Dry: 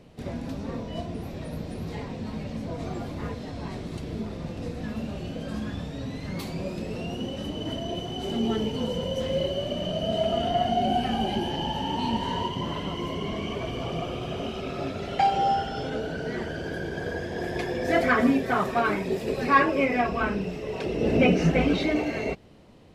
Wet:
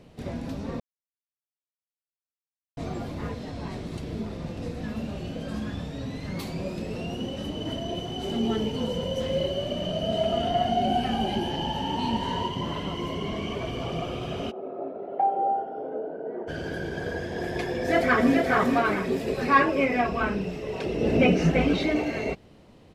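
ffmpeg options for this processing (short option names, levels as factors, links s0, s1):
-filter_complex "[0:a]asplit=3[s0][s1][s2];[s0]afade=t=out:st=14.5:d=0.02[s3];[s1]asuperpass=centerf=520:order=4:qfactor=0.95,afade=t=in:st=14.5:d=0.02,afade=t=out:st=16.47:d=0.02[s4];[s2]afade=t=in:st=16.47:d=0.02[s5];[s3][s4][s5]amix=inputs=3:normalize=0,asplit=2[s6][s7];[s7]afade=t=in:st=17.68:d=0.01,afade=t=out:st=18.35:d=0.01,aecho=0:1:430|860|1290|1720:0.630957|0.220835|0.0772923|0.0270523[s8];[s6][s8]amix=inputs=2:normalize=0,asplit=3[s9][s10][s11];[s9]atrim=end=0.8,asetpts=PTS-STARTPTS,afade=t=out:st=0.796:d=0.004:c=hsin[s12];[s10]atrim=start=0.8:end=2.77,asetpts=PTS-STARTPTS,volume=0[s13];[s11]atrim=start=2.77,asetpts=PTS-STARTPTS,afade=t=in:d=0.004:c=hsin[s14];[s12][s13][s14]concat=n=3:v=0:a=1"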